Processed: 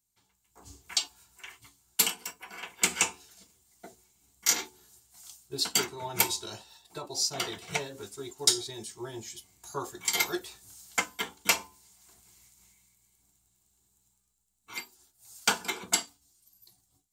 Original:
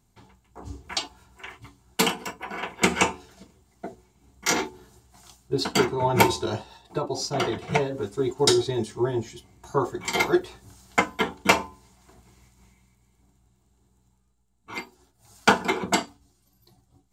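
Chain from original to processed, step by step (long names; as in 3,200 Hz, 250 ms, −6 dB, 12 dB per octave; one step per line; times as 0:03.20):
first-order pre-emphasis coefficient 0.9
automatic gain control gain up to 11.5 dB
level −5.5 dB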